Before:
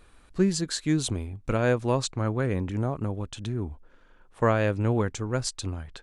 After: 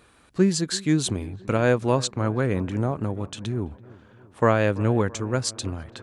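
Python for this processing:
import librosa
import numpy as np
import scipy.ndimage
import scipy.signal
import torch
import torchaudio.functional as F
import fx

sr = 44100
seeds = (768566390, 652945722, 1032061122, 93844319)

y = scipy.signal.sosfilt(scipy.signal.butter(2, 90.0, 'highpass', fs=sr, output='sos'), x)
y = fx.echo_wet_lowpass(y, sr, ms=334, feedback_pct=58, hz=1900.0, wet_db=-20.5)
y = y * librosa.db_to_amplitude(3.5)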